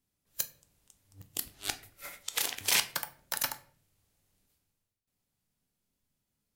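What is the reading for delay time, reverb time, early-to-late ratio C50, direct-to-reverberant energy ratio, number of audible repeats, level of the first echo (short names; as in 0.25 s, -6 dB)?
none, 0.50 s, 16.0 dB, 8.5 dB, none, none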